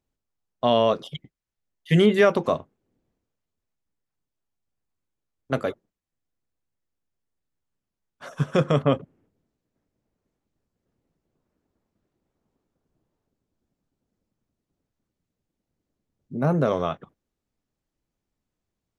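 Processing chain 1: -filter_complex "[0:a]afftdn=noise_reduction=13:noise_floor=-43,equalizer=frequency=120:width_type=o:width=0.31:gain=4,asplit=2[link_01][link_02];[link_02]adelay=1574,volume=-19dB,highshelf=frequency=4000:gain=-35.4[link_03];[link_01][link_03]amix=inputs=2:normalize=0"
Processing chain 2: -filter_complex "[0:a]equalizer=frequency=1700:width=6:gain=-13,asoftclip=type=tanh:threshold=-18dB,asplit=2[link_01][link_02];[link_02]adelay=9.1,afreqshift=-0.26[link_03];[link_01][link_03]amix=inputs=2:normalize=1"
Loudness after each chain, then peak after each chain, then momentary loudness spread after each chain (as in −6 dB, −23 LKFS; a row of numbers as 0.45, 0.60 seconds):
−23.0, −30.5 LKFS; −5.5, −16.0 dBFS; 22, 16 LU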